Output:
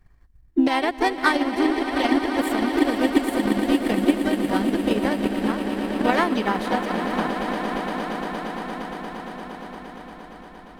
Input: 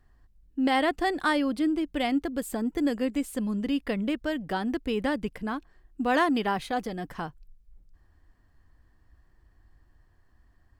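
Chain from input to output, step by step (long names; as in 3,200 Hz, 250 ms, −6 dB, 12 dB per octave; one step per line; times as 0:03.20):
echo that builds up and dies away 116 ms, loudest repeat 8, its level −10.5 dB
transient designer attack +11 dB, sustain −4 dB
pitch-shifted copies added +4 semitones −7 dB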